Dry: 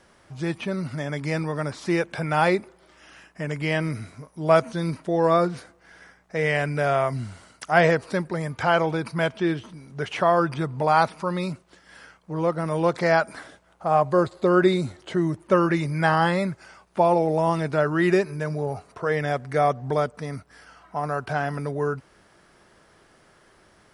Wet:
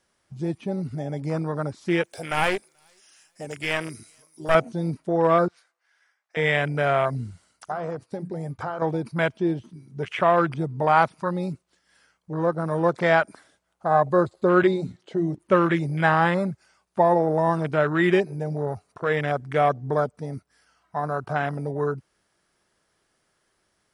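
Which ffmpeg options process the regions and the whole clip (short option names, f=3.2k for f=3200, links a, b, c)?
-filter_complex "[0:a]asettb=1/sr,asplit=3[a][b][c];[a]atrim=end=2.044[d];[b]atrim=start=2.04:end=4.55,asetpts=PTS-STARTPTS,afade=t=in:d=0.004:c=qsin,afade=t=out:st=2.506:d=0.004:c=qsin,bass=f=250:g=-13,treble=f=4k:g=14,aeval=exprs='clip(val(0),-1,0.0376)':c=same,aecho=1:1:433|866:0.0708|0.0149,atrim=end_sample=110691[e];[c]atrim=start=4.546[f];[d][e]acrossfade=d=0.004:c1=hsin:c2=qsin[g];[g][f]acrossfade=d=0.004:c1=qsin:c2=hsin,asettb=1/sr,asplit=3[h][i][j];[h]atrim=end=5.484[k];[i]atrim=start=5.48:end=6.37,asetpts=PTS-STARTPTS,afade=t=in:d=0.004:c=qsin,afade=t=out:st=0.886:d=0.004:c=qsin,highpass=990,highshelf=f=6.1k:g=-10.5[l];[j]atrim=start=6.366[m];[k][l]acrossfade=d=0.004:c1=hsin:c2=qsin[n];[n][m]acrossfade=d=0.004:c1=qsin:c2=hsin,asettb=1/sr,asplit=3[o][p][q];[o]atrim=end=7.714[r];[p]atrim=start=7.71:end=8.82,asetpts=PTS-STARTPTS,afade=t=in:d=0.004:c=qsin,afade=t=out:st=1.106:d=0.004:c=qsin,bandreject=f=60:t=h:w=6,bandreject=f=120:t=h:w=6,bandreject=f=180:t=h:w=6,bandreject=f=240:t=h:w=6,bandreject=f=300:t=h:w=6,agate=range=-33dB:threshold=-36dB:ratio=3:release=100:detection=peak,acompressor=threshold=-25dB:ratio=8:attack=3.2:release=140:knee=1:detection=peak[s];[q]atrim=start=8.816[t];[r][s]acrossfade=d=0.004:c1=hsin:c2=qsin[u];[u][t]acrossfade=d=0.004:c1=qsin:c2=hsin,asettb=1/sr,asplit=3[v][w][x];[v]atrim=end=14.634[y];[w]atrim=start=14.63:end=15.39,asetpts=PTS-STARTPTS,afade=t=in:d=0.004:c=qsin,afade=t=out:st=0.756:d=0.004:c=qsin,highpass=120,lowpass=3.5k,aemphasis=mode=production:type=75fm,bandreject=f=60:t=h:w=6,bandreject=f=120:t=h:w=6,bandreject=f=180:t=h:w=6,bandreject=f=240:t=h:w=6,bandreject=f=300:t=h:w=6[z];[x]atrim=start=15.386[aa];[y][z]acrossfade=d=0.004:c1=hsin:c2=qsin[ab];[ab][aa]acrossfade=d=0.004:c1=qsin:c2=hsin,afwtdn=0.0355,highshelf=f=3.3k:g=10"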